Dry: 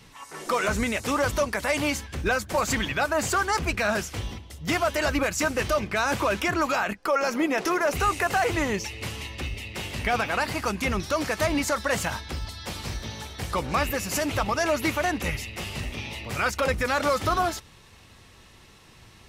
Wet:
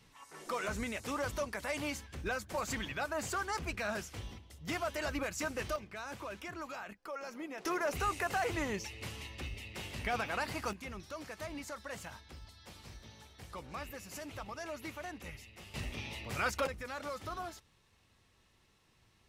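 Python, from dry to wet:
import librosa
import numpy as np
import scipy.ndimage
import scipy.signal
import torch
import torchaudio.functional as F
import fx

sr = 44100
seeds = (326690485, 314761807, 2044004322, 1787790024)

y = fx.gain(x, sr, db=fx.steps((0.0, -12.0), (5.76, -19.0), (7.65, -10.0), (10.73, -18.5), (15.74, -8.0), (16.67, -17.5)))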